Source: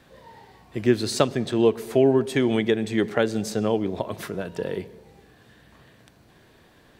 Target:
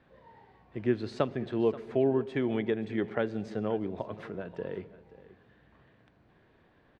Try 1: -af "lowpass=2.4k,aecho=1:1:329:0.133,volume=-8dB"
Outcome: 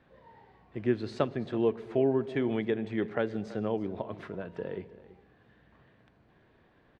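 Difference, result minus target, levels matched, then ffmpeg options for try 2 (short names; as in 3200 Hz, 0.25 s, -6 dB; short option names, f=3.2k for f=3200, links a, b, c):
echo 0.201 s early
-af "lowpass=2.4k,aecho=1:1:530:0.133,volume=-8dB"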